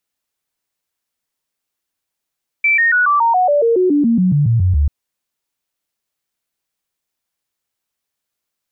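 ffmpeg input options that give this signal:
-f lavfi -i "aevalsrc='0.316*clip(min(mod(t,0.14),0.14-mod(t,0.14))/0.005,0,1)*sin(2*PI*2330*pow(2,-floor(t/0.14)/3)*mod(t,0.14))':d=2.24:s=44100"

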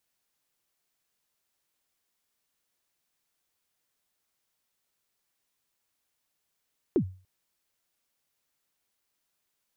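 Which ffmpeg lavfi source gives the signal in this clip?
-f lavfi -i "aevalsrc='0.141*pow(10,-3*t/0.37)*sin(2*PI*(420*0.082/log(93/420)*(exp(log(93/420)*min(t,0.082)/0.082)-1)+93*max(t-0.082,0)))':d=0.29:s=44100"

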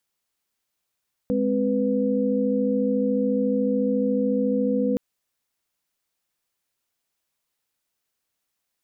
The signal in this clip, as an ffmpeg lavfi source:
-f lavfi -i "aevalsrc='0.0631*(sin(2*PI*207.65*t)+sin(2*PI*261.63*t)+sin(2*PI*493.88*t))':d=3.67:s=44100"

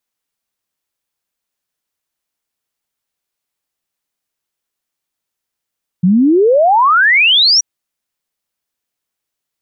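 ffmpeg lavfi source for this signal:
-f lavfi -i "aevalsrc='0.473*clip(min(t,1.58-t)/0.01,0,1)*sin(2*PI*170*1.58/log(5900/170)*(exp(log(5900/170)*t/1.58)-1))':d=1.58:s=44100"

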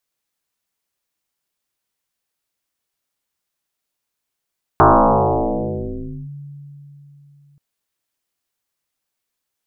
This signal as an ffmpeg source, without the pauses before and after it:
-f lavfi -i "aevalsrc='0.501*pow(10,-3*t/3.83)*sin(2*PI*143*t+10*clip(1-t/1.49,0,1)*sin(2*PI*0.82*143*t))':d=2.78:s=44100"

